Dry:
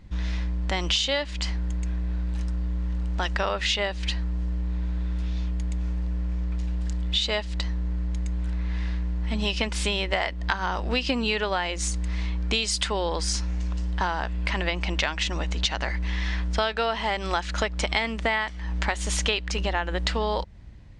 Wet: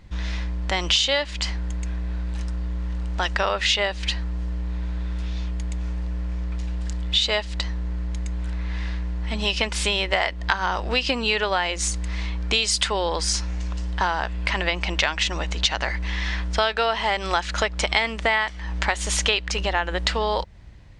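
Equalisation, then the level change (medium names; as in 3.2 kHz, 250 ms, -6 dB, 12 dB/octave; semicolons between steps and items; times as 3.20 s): peaking EQ 240 Hz -4 dB 0.69 oct; bass shelf 340 Hz -4.5 dB; +4.5 dB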